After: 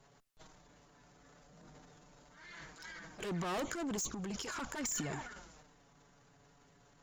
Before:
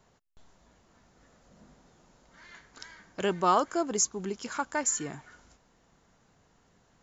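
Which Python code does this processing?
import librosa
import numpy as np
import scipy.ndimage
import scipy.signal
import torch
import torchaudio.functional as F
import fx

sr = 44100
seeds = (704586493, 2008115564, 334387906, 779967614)

y = fx.env_flanger(x, sr, rest_ms=7.3, full_db=-23.5)
y = fx.tube_stage(y, sr, drive_db=38.0, bias=0.25)
y = fx.transient(y, sr, attack_db=-9, sustain_db=10)
y = y * 10.0 ** (3.5 / 20.0)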